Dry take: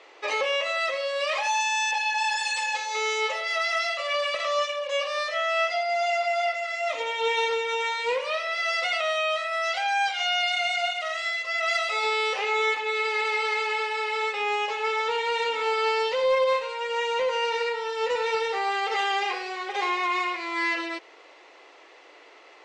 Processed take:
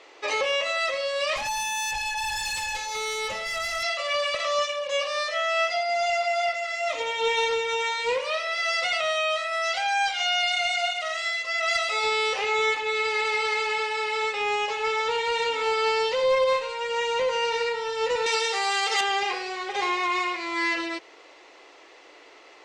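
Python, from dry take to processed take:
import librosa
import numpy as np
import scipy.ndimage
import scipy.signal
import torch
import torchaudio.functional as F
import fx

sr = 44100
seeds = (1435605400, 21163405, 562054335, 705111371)

y = fx.tube_stage(x, sr, drive_db=26.0, bias=0.25, at=(1.36, 3.83))
y = fx.riaa(y, sr, side='recording', at=(18.26, 19.01))
y = fx.bass_treble(y, sr, bass_db=10, treble_db=5)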